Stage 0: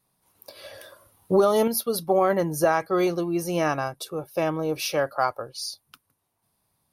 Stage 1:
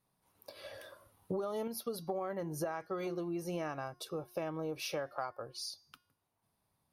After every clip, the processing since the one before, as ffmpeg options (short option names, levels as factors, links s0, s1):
-af "highshelf=f=4700:g=-7,bandreject=f=358.2:t=h:w=4,bandreject=f=716.4:t=h:w=4,bandreject=f=1074.6:t=h:w=4,bandreject=f=1432.8:t=h:w=4,bandreject=f=1791:t=h:w=4,bandreject=f=2149.2:t=h:w=4,bandreject=f=2507.4:t=h:w=4,bandreject=f=2865.6:t=h:w=4,bandreject=f=3223.8:t=h:w=4,bandreject=f=3582:t=h:w=4,bandreject=f=3940.2:t=h:w=4,bandreject=f=4298.4:t=h:w=4,bandreject=f=4656.6:t=h:w=4,bandreject=f=5014.8:t=h:w=4,bandreject=f=5373:t=h:w=4,bandreject=f=5731.2:t=h:w=4,bandreject=f=6089.4:t=h:w=4,bandreject=f=6447.6:t=h:w=4,acompressor=threshold=0.0316:ratio=6,volume=0.562"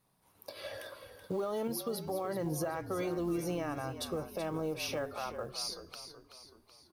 -filter_complex "[0:a]alimiter=level_in=2.82:limit=0.0631:level=0:latency=1:release=64,volume=0.355,acrusher=bits=8:mode=log:mix=0:aa=0.000001,asplit=2[s0][s1];[s1]asplit=5[s2][s3][s4][s5][s6];[s2]adelay=378,afreqshift=-47,volume=0.299[s7];[s3]adelay=756,afreqshift=-94,volume=0.146[s8];[s4]adelay=1134,afreqshift=-141,volume=0.0716[s9];[s5]adelay=1512,afreqshift=-188,volume=0.0351[s10];[s6]adelay=1890,afreqshift=-235,volume=0.0172[s11];[s7][s8][s9][s10][s11]amix=inputs=5:normalize=0[s12];[s0][s12]amix=inputs=2:normalize=0,volume=1.88"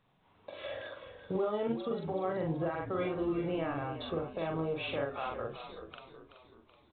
-filter_complex "[0:a]asplit=2[s0][s1];[s1]adelay=43,volume=0.794[s2];[s0][s2]amix=inputs=2:normalize=0" -ar 8000 -c:a pcm_mulaw